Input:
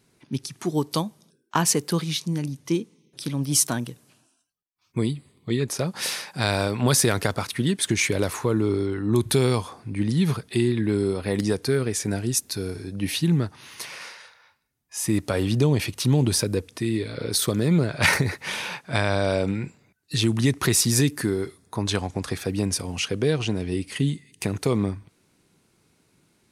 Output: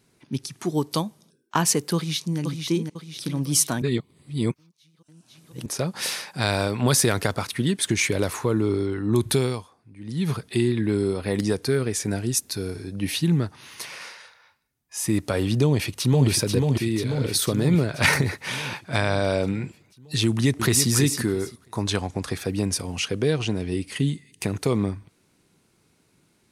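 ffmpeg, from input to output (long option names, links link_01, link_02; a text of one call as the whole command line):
ffmpeg -i in.wav -filter_complex "[0:a]asplit=2[link_01][link_02];[link_02]afade=type=in:start_time=1.95:duration=0.01,afade=type=out:start_time=2.39:duration=0.01,aecho=0:1:500|1000|1500|2000|2500|3000:0.562341|0.253054|0.113874|0.0512434|0.0230595|0.0103768[link_03];[link_01][link_03]amix=inputs=2:normalize=0,asplit=2[link_04][link_05];[link_05]afade=type=in:start_time=15.64:duration=0.01,afade=type=out:start_time=16.28:duration=0.01,aecho=0:1:490|980|1470|1960|2450|2940|3430|3920|4410|4900:0.668344|0.434424|0.282375|0.183544|0.119304|0.0775473|0.0504058|0.0327637|0.0212964|0.0138427[link_06];[link_04][link_06]amix=inputs=2:normalize=0,asplit=2[link_07][link_08];[link_08]afade=type=in:start_time=20.26:duration=0.01,afade=type=out:start_time=20.89:duration=0.01,aecho=0:1:330|660|990:0.398107|0.0796214|0.0159243[link_09];[link_07][link_09]amix=inputs=2:normalize=0,asplit=5[link_10][link_11][link_12][link_13][link_14];[link_10]atrim=end=3.822[link_15];[link_11]atrim=start=3.818:end=5.662,asetpts=PTS-STARTPTS,areverse[link_16];[link_12]atrim=start=5.658:end=9.68,asetpts=PTS-STARTPTS,afade=type=out:start_time=3.662:duration=0.36:silence=0.141254[link_17];[link_13]atrim=start=9.68:end=10.01,asetpts=PTS-STARTPTS,volume=-17dB[link_18];[link_14]atrim=start=10.01,asetpts=PTS-STARTPTS,afade=type=in:duration=0.36:silence=0.141254[link_19];[link_15][link_16]acrossfade=duration=0.004:curve1=hsin:curve2=hsin[link_20];[link_17][link_18][link_19]concat=n=3:v=0:a=1[link_21];[link_20][link_21]acrossfade=duration=0.004:curve1=hsin:curve2=hsin" out.wav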